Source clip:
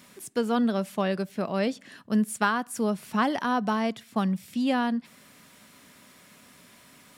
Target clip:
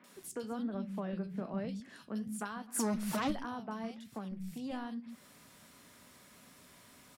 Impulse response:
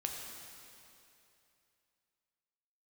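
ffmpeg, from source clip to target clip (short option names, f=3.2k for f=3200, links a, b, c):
-filter_complex "[0:a]acrossover=split=140[a][b];[b]acompressor=threshold=-37dB:ratio=3[c];[a][c]amix=inputs=2:normalize=0,asplit=3[d][e][f];[d]afade=t=out:st=2.67:d=0.02[g];[e]aeval=exprs='0.0708*sin(PI/2*2.51*val(0)/0.0708)':c=same,afade=t=in:st=2.67:d=0.02,afade=t=out:st=3.3:d=0.02[h];[f]afade=t=in:st=3.3:d=0.02[i];[g][h][i]amix=inputs=3:normalize=0,lowshelf=f=130:g=5,asettb=1/sr,asplit=3[j][k][l];[j]atrim=end=4.034[m];[k]atrim=start=4.03:end=4.7,asetpts=PTS-STARTPTS,afade=t=in:d=0.004:c=qsin,afade=t=out:st=0.666:d=0.004:c=qsin,aeval=exprs='(tanh(20*val(0)+0.4)-tanh(0.4))/20':c=same[n];[l]atrim=start=4.696[o];[m][n]acrossfade=d=0.004:c1=hsin:c2=qsin[p];[p][o]acrossfade=d=0.004:c1=qsin:c2=hsin,flanger=delay=9.3:depth=9.6:regen=-68:speed=1.2:shape=sinusoidal,asettb=1/sr,asplit=3[q][r][s];[q]atrim=end=0.594[t];[r]atrim=start=0.59:end=1.65,asetpts=PTS-STARTPTS,afade=t=in:d=0.004:c=qsin,afade=t=out:st=1.056:d=0.004:c=qsin,bass=f=250:g=6,treble=f=4k:g=-12[u];[s]atrim=start=1.646[v];[t][u]acrossfade=d=0.004:c1=hsin:c2=qsin[w];[w][v]acrossfade=d=0.004:c1=qsin:c2=hsin,acrossover=split=190|2400[x][y][z];[z]adelay=40[aa];[x]adelay=150[ab];[ab][y][aa]amix=inputs=3:normalize=0"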